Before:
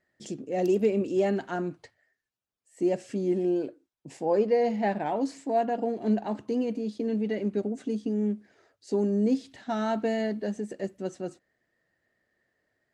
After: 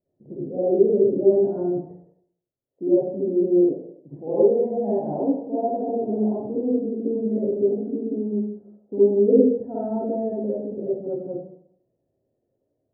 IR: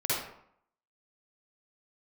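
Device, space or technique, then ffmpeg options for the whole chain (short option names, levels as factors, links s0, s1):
next room: -filter_complex "[0:a]lowpass=f=600:w=0.5412,lowpass=f=600:w=1.3066[s0];[1:a]atrim=start_sample=2205[s1];[s0][s1]afir=irnorm=-1:irlink=0,asettb=1/sr,asplit=3[s2][s3][s4];[s2]atrim=end=9.284[s5];[s3]atrim=start=9.28:end=9.84,asetpts=PTS-STARTPTS,afade=t=in:d=0.004:c=qsin,afade=t=out:st=0.556:d=0.004:c=qsin,equalizer=f=460:t=o:w=0.43:g=12.5[s6];[s4]atrim=start=9.836[s7];[s5][s6]acrossfade=d=0.004:c1=hsin:c2=qsin[s8];[s8][s7]acrossfade=d=0.004:c1=qsin:c2=hsin,volume=0.75"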